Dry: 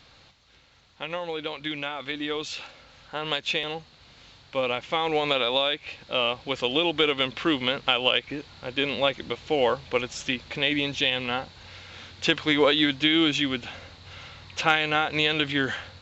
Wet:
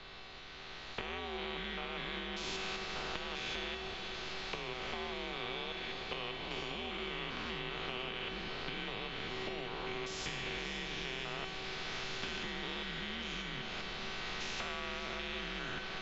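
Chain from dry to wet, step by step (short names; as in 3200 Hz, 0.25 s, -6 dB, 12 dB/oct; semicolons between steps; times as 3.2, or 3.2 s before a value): stepped spectrum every 0.2 s; recorder AGC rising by 15 dB/s; LPF 3800 Hz 12 dB/oct; bell 110 Hz +11 dB 1.1 oct; compressor, threshold -30 dBFS, peak gain reduction 11.5 dB; frequency shift -100 Hz; resonator 380 Hz, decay 0.88 s, mix 90%; diffused feedback echo 0.519 s, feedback 73%, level -11.5 dB; spectral compressor 2:1; gain +11 dB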